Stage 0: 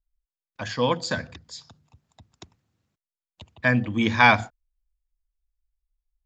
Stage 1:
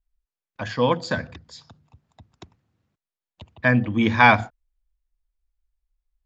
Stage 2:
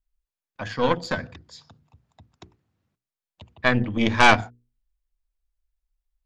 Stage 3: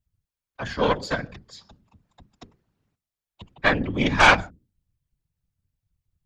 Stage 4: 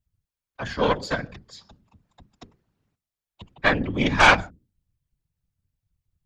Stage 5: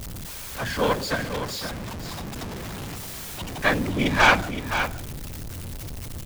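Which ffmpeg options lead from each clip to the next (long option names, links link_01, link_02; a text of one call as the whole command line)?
ffmpeg -i in.wav -af "lowpass=frequency=2600:poles=1,volume=3dB" out.wav
ffmpeg -i in.wav -af "bandreject=frequency=60:width_type=h:width=6,bandreject=frequency=120:width_type=h:width=6,bandreject=frequency=180:width_type=h:width=6,bandreject=frequency=240:width_type=h:width=6,bandreject=frequency=300:width_type=h:width=6,bandreject=frequency=360:width_type=h:width=6,bandreject=frequency=420:width_type=h:width=6,bandreject=frequency=480:width_type=h:width=6,aeval=exprs='0.841*(cos(1*acos(clip(val(0)/0.841,-1,1)))-cos(1*PI/2))+0.237*(cos(4*acos(clip(val(0)/0.841,-1,1)))-cos(4*PI/2))':channel_layout=same,volume=-2dB" out.wav
ffmpeg -i in.wav -filter_complex "[0:a]acrossover=split=410|3700[link_01][link_02][link_03];[link_01]alimiter=limit=-19.5dB:level=0:latency=1[link_04];[link_04][link_02][link_03]amix=inputs=3:normalize=0,afftfilt=real='hypot(re,im)*cos(2*PI*random(0))':imag='hypot(re,im)*sin(2*PI*random(1))':win_size=512:overlap=0.75,volume=7dB" out.wav
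ffmpeg -i in.wav -af anull out.wav
ffmpeg -i in.wav -af "aeval=exprs='val(0)+0.5*0.0501*sgn(val(0))':channel_layout=same,aecho=1:1:518:0.355,volume=-2.5dB" out.wav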